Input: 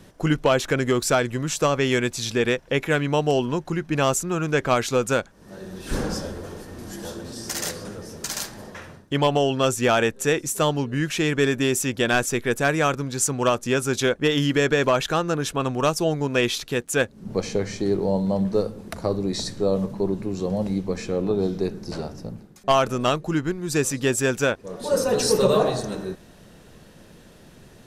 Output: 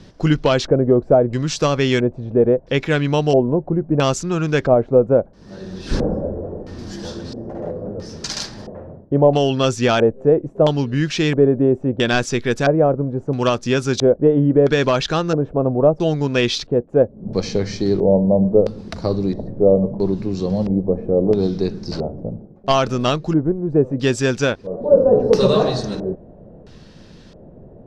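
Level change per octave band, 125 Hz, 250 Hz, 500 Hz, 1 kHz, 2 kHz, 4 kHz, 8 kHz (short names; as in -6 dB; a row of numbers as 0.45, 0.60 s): +6.5, +6.0, +6.5, +1.5, -1.0, +2.0, -5.5 dB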